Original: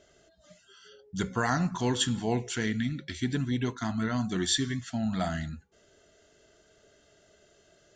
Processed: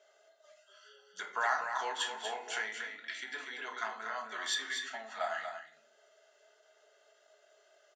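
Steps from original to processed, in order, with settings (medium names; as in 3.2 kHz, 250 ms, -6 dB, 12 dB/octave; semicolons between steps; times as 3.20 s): simulated room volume 270 m³, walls furnished, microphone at 1.4 m; in parallel at -6 dB: one-sided clip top -22.5 dBFS; on the sum: treble shelf 2.5 kHz -8.5 dB; compression 4:1, threshold -24 dBFS, peak gain reduction 8.5 dB; delay 239 ms -7 dB; dynamic bell 1.7 kHz, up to +7 dB, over -48 dBFS, Q 0.81; high-pass 590 Hz 24 dB/octave; endings held to a fixed fall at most 130 dB/s; trim -5 dB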